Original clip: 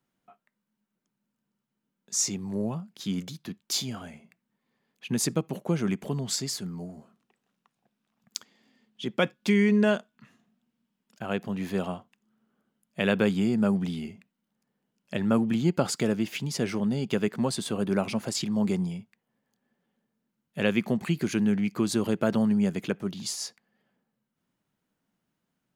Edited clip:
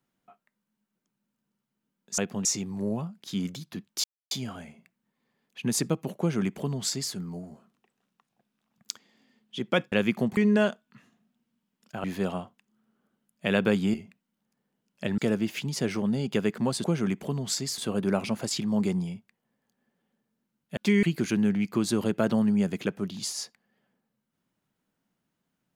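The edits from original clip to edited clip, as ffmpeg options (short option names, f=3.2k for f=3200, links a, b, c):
-filter_complex "[0:a]asplit=13[a][b][c][d][e][f][g][h][i][j][k][l][m];[a]atrim=end=2.182[n];[b]atrim=start=11.308:end=11.582[o];[c]atrim=start=2.178:end=3.77,asetpts=PTS-STARTPTS,afade=t=out:st=1.588:d=0.004:c=hsin,apad=pad_dur=0.27[p];[d]atrim=start=3.77:end=9.382,asetpts=PTS-STARTPTS,afade=t=in:d=0.004:c=hsin[q];[e]atrim=start=20.608:end=21.062[r];[f]atrim=start=9.638:end=11.312[s];[g]atrim=start=11.578:end=13.482[t];[h]atrim=start=14.038:end=15.282[u];[i]atrim=start=15.958:end=17.622[v];[j]atrim=start=5.648:end=6.592[w];[k]atrim=start=17.618:end=20.612[x];[l]atrim=start=9.378:end=9.642[y];[m]atrim=start=21.058[z];[n][o]acrossfade=d=0.004:c1=hsin:c2=hsin[aa];[p][q]concat=n=2:v=0:a=1[ab];[aa][ab]acrossfade=d=0.004:c1=hsin:c2=hsin[ac];[ac][r]acrossfade=d=0.004:c1=hsin:c2=hsin[ad];[ad][s]acrossfade=d=0.004:c1=hsin:c2=hsin[ae];[ae][t]acrossfade=d=0.004:c1=hsin:c2=hsin[af];[af][u]acrossfade=d=0.004:c1=hsin:c2=hsin[ag];[ag][v]acrossfade=d=0.004:c1=hsin:c2=hsin[ah];[ah][w]acrossfade=d=0.004:c1=hsin:c2=hsin[ai];[ai][x]acrossfade=d=0.004:c1=hsin:c2=hsin[aj];[aj][y]acrossfade=d=0.004:c1=hsin:c2=hsin[ak];[ak][z]acrossfade=d=0.004:c1=hsin:c2=hsin"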